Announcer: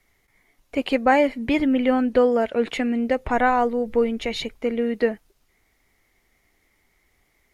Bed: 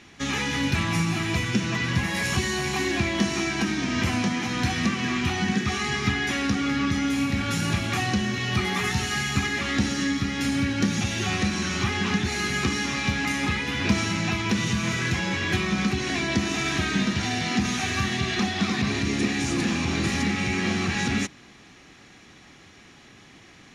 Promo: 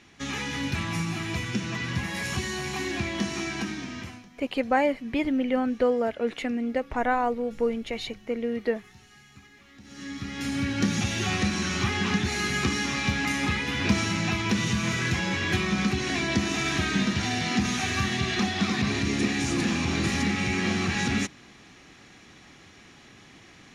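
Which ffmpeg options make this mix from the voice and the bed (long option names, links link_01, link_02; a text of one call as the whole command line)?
ffmpeg -i stem1.wav -i stem2.wav -filter_complex "[0:a]adelay=3650,volume=-5.5dB[link_01];[1:a]volume=21dB,afade=type=out:start_time=3.56:duration=0.69:silence=0.0794328,afade=type=in:start_time=9.83:duration=1.06:silence=0.0501187[link_02];[link_01][link_02]amix=inputs=2:normalize=0" out.wav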